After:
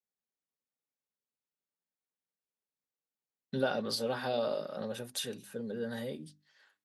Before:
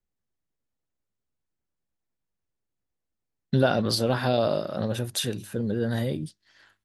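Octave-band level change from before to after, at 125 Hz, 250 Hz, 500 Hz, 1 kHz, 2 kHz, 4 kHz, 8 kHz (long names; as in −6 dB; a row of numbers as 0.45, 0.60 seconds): −18.0, −11.5, −8.0, −8.5, −7.5, −8.0, −8.5 decibels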